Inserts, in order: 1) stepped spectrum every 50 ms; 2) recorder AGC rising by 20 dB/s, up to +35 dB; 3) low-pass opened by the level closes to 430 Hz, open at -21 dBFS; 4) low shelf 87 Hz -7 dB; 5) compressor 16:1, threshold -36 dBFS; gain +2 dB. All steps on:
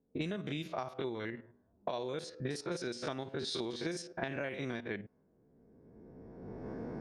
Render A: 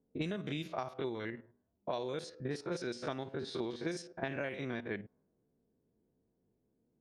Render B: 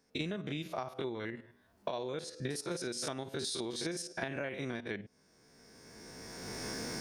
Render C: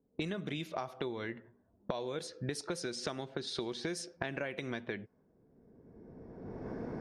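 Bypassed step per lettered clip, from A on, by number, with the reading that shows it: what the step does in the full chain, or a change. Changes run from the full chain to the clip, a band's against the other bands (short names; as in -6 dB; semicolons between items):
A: 2, momentary loudness spread change -8 LU; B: 3, 8 kHz band +8.5 dB; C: 1, 8 kHz band +3.5 dB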